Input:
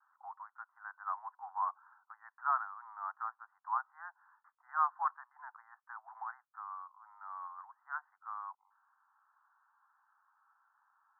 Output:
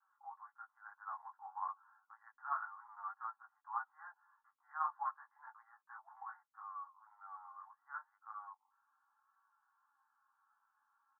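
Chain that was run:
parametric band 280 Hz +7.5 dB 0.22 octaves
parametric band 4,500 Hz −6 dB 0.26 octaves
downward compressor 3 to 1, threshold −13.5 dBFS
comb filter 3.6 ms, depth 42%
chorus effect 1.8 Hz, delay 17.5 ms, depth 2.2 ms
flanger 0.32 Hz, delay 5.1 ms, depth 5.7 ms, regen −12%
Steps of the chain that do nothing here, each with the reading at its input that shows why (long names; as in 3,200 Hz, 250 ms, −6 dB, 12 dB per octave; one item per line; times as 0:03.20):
parametric band 280 Hz: nothing at its input below 600 Hz
parametric band 4,500 Hz: nothing at its input above 1,800 Hz
downward compressor, threshold −13.5 dBFS: peak of its input −18.5 dBFS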